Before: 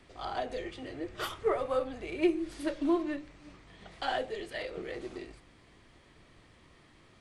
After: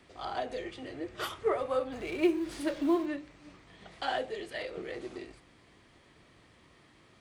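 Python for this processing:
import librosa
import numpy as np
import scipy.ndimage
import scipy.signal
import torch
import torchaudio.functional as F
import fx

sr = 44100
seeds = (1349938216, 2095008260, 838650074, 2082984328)

y = fx.law_mismatch(x, sr, coded='mu', at=(1.92, 3.06))
y = fx.highpass(y, sr, hz=82.0, slope=6)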